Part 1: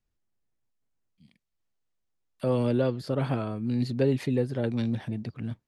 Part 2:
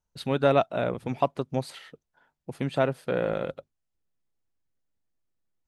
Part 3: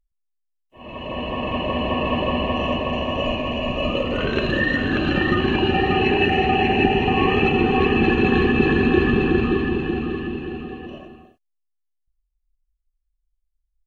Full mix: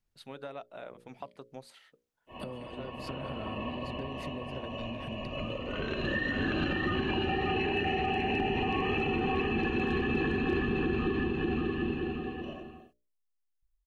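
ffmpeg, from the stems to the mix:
-filter_complex "[0:a]acompressor=threshold=0.0251:ratio=2.5,volume=1,asplit=2[s0][s1];[1:a]agate=range=0.0224:threshold=0.00126:ratio=3:detection=peak,lowshelf=f=220:g=-11,volume=0.237[s2];[2:a]adelay=1550,volume=0.668[s3];[s1]apad=whole_len=679643[s4];[s3][s4]sidechaincompress=threshold=0.00708:ratio=5:attack=46:release=1310[s5];[s0][s2]amix=inputs=2:normalize=0,acompressor=threshold=0.0126:ratio=6,volume=1[s6];[s5][s6]amix=inputs=2:normalize=0,bandreject=f=60:t=h:w=6,bandreject=f=120:t=h:w=6,bandreject=f=180:t=h:w=6,bandreject=f=240:t=h:w=6,bandreject=f=300:t=h:w=6,bandreject=f=360:t=h:w=6,bandreject=f=420:t=h:w=6,bandreject=f=480:t=h:w=6,bandreject=f=540:t=h:w=6,bandreject=f=600:t=h:w=6,asoftclip=type=hard:threshold=0.251,alimiter=limit=0.0841:level=0:latency=1:release=134"

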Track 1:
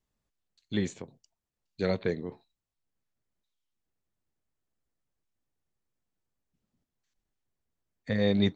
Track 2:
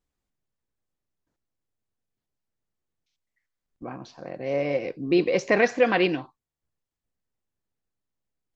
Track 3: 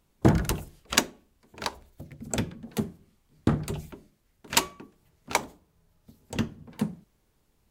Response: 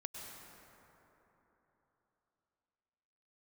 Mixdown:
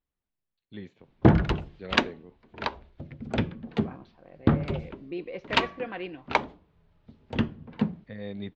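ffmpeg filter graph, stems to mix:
-filter_complex "[0:a]volume=0.251[s0];[1:a]volume=0.447,afade=t=out:st=3.98:d=0.25:silence=0.421697[s1];[2:a]adelay=1000,volume=1.33[s2];[s0][s1][s2]amix=inputs=3:normalize=0,lowpass=f=3600:w=0.5412,lowpass=f=3600:w=1.3066"

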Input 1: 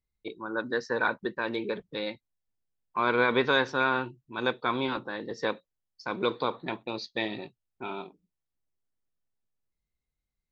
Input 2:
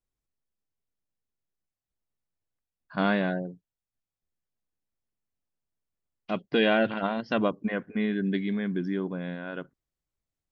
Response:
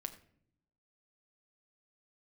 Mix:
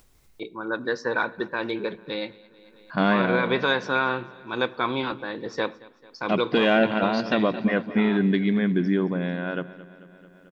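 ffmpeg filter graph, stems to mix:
-filter_complex "[0:a]adelay=150,volume=1,asplit=3[s0][s1][s2];[s1]volume=0.562[s3];[s2]volume=0.106[s4];[1:a]acontrast=75,volume=1,asplit=2[s5][s6];[s6]volume=0.15[s7];[2:a]atrim=start_sample=2205[s8];[s3][s8]afir=irnorm=-1:irlink=0[s9];[s4][s7]amix=inputs=2:normalize=0,aecho=0:1:221|442|663|884|1105|1326|1547|1768:1|0.54|0.292|0.157|0.085|0.0459|0.0248|0.0134[s10];[s0][s5][s9][s10]amix=inputs=4:normalize=0,acompressor=mode=upward:threshold=0.00794:ratio=2.5,alimiter=limit=0.282:level=0:latency=1:release=151"

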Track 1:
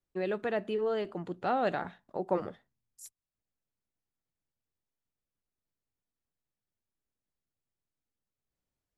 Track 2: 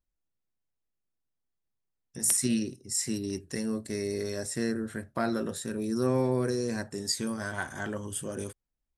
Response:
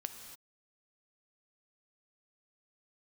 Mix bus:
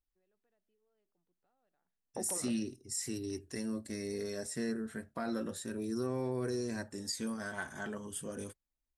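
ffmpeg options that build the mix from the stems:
-filter_complex "[0:a]acompressor=threshold=0.0224:ratio=6,volume=0.794[s0];[1:a]flanger=delay=2.6:depth=2.1:regen=-42:speed=0.32:shape=sinusoidal,volume=0.794,asplit=2[s1][s2];[s2]apad=whole_len=395839[s3];[s0][s3]sidechaingate=range=0.00794:threshold=0.00282:ratio=16:detection=peak[s4];[s4][s1]amix=inputs=2:normalize=0,alimiter=level_in=1.26:limit=0.0631:level=0:latency=1:release=40,volume=0.794"

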